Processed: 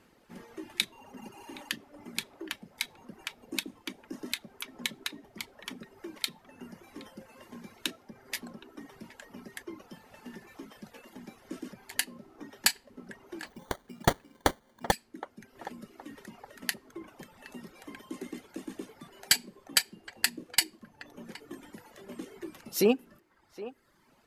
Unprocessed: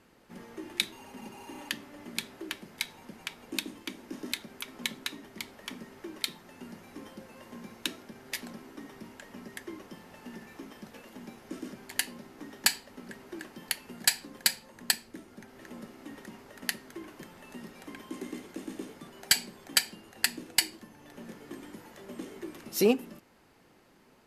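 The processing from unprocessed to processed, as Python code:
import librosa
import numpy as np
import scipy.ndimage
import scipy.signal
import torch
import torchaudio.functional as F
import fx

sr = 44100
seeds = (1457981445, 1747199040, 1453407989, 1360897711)

p1 = fx.sample_hold(x, sr, seeds[0], rate_hz=2600.0, jitter_pct=0, at=(13.46, 14.92))
p2 = p1 + fx.echo_banded(p1, sr, ms=768, feedback_pct=40, hz=880.0, wet_db=-13, dry=0)
y = fx.dereverb_blind(p2, sr, rt60_s=0.94)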